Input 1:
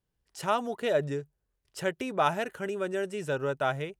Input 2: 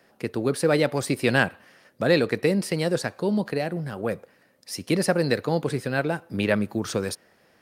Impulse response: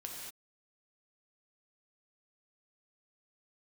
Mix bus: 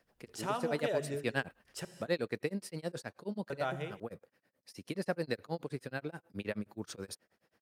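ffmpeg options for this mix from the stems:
-filter_complex "[0:a]acompressor=threshold=-47dB:ratio=1.5,volume=-2dB,asplit=3[a][b][c];[a]atrim=end=1.85,asetpts=PTS-STARTPTS,afade=t=out:st=1.846:d=0.004:c=hsin[d];[b]atrim=start=1.85:end=3.5,asetpts=PTS-STARTPTS,volume=0[e];[c]atrim=start=3.5,asetpts=PTS-STARTPTS,afade=t=in:d=0.004:c=hsin[f];[d][e][f]concat=n=3:v=0:a=1,asplit=2[g][h];[h]volume=-5dB[i];[1:a]tremolo=f=9.4:d=0.99,volume=-11dB[j];[2:a]atrim=start_sample=2205[k];[i][k]afir=irnorm=-1:irlink=0[l];[g][j][l]amix=inputs=3:normalize=0"

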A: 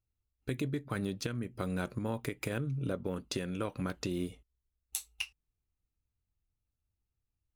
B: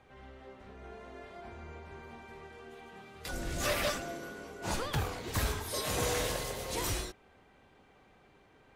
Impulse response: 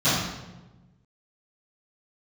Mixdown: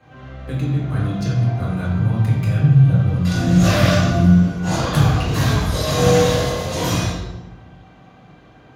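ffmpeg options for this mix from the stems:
-filter_complex "[0:a]asubboost=boost=11.5:cutoff=110,volume=-0.5dB,asplit=2[a][b];[b]volume=-12dB[c];[1:a]volume=0.5dB,asplit=2[d][e];[e]volume=-6dB[f];[2:a]atrim=start_sample=2205[g];[c][f]amix=inputs=2:normalize=0[h];[h][g]afir=irnorm=-1:irlink=0[i];[a][d][i]amix=inputs=3:normalize=0"

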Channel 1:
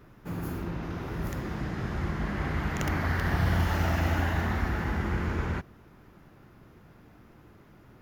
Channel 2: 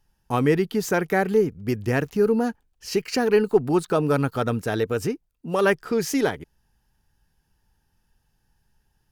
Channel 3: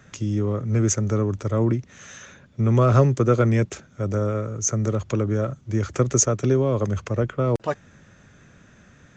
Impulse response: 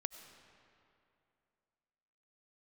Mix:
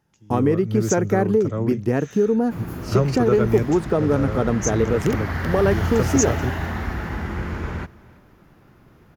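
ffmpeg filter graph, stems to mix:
-filter_complex "[0:a]adelay=2250,volume=2dB,asplit=2[a][b];[b]volume=-22dB[c];[1:a]highpass=140,tiltshelf=f=1.1k:g=7,acompressor=threshold=-18dB:ratio=3,volume=1.5dB,asplit=2[d][e];[2:a]volume=-4.5dB,asplit=2[f][g];[g]volume=-20.5dB[h];[e]apad=whole_len=404075[i];[f][i]sidechaingate=range=-33dB:threshold=-37dB:ratio=16:detection=peak[j];[3:a]atrim=start_sample=2205[k];[h][k]afir=irnorm=-1:irlink=0[l];[c]aecho=0:1:336:1[m];[a][d][j][l][m]amix=inputs=5:normalize=0"

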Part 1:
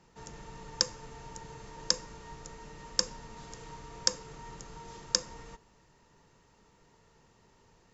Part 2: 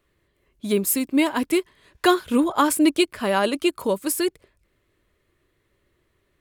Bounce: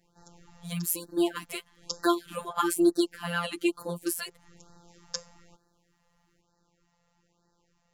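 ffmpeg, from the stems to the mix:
-filter_complex "[0:a]volume=-4dB[a];[1:a]aecho=1:1:6.5:0.77,volume=-5.5dB,asplit=2[b][c];[c]apad=whole_len=349872[d];[a][d]sidechaincompress=threshold=-43dB:ratio=3:attack=16:release=200[e];[e][b]amix=inputs=2:normalize=0,afftfilt=real='hypot(re,im)*cos(PI*b)':imag='0':win_size=1024:overlap=0.75,afftfilt=real='re*(1-between(b*sr/1024,270*pow(2700/270,0.5+0.5*sin(2*PI*1.1*pts/sr))/1.41,270*pow(2700/270,0.5+0.5*sin(2*PI*1.1*pts/sr))*1.41))':imag='im*(1-between(b*sr/1024,270*pow(2700/270,0.5+0.5*sin(2*PI*1.1*pts/sr))/1.41,270*pow(2700/270,0.5+0.5*sin(2*PI*1.1*pts/sr))*1.41))':win_size=1024:overlap=0.75"

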